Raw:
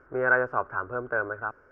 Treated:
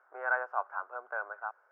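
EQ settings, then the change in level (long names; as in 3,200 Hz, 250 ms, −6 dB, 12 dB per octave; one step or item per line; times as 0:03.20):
four-pole ladder high-pass 670 Hz, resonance 55%
0.0 dB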